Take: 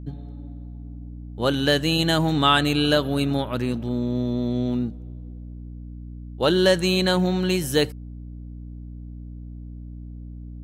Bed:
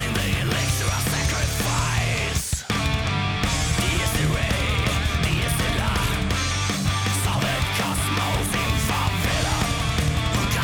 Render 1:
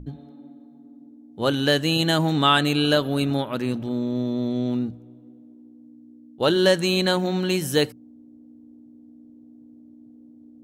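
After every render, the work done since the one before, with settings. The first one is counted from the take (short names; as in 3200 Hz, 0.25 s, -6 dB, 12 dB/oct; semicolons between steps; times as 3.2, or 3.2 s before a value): notches 60/120/180 Hz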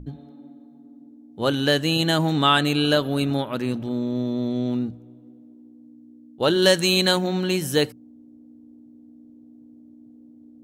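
6.62–7.19 high shelf 2800 Hz +7.5 dB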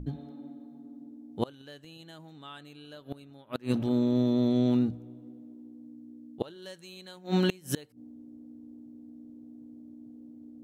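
flipped gate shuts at -15 dBFS, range -28 dB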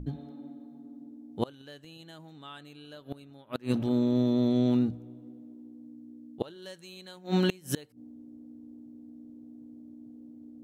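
nothing audible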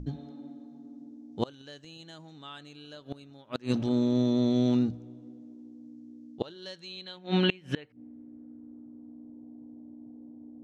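low-pass sweep 6100 Hz -> 910 Hz, 6.29–9.38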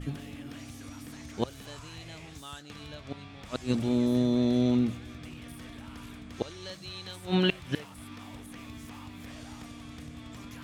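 add bed -24.5 dB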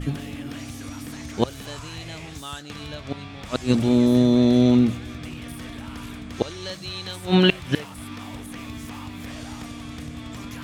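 gain +8.5 dB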